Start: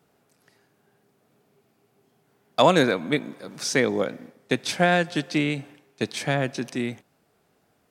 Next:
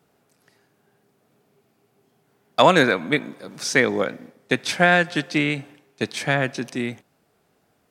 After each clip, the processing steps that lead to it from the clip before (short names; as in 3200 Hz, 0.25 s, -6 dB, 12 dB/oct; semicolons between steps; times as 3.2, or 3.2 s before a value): dynamic EQ 1700 Hz, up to +6 dB, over -36 dBFS, Q 0.87; gain +1 dB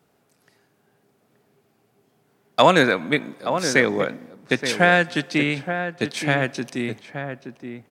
outdoor echo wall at 150 m, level -8 dB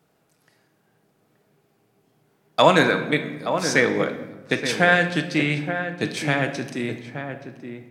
reverb RT60 1.1 s, pre-delay 6 ms, DRR 7 dB; gain -1.5 dB